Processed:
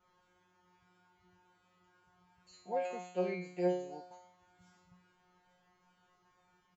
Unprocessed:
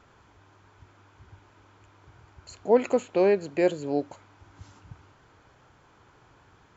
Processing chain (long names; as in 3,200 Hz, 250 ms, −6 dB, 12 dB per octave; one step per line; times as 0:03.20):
parametric band 110 Hz +5.5 dB 0.41 octaves
comb filter 4.4 ms, depth 39%
tape wow and flutter 82 cents
tuned comb filter 180 Hz, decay 0.61 s, harmonics all, mix 100%
level +2.5 dB